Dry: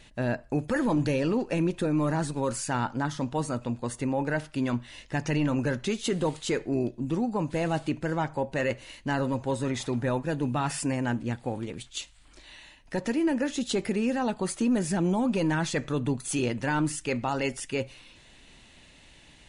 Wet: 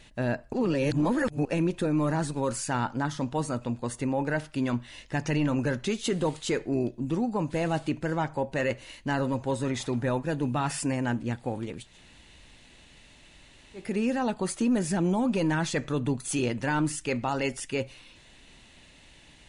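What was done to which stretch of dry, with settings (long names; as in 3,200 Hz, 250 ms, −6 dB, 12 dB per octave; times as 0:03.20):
0:00.53–0:01.45: reverse
0:11.86–0:13.85: fill with room tone, crossfade 0.24 s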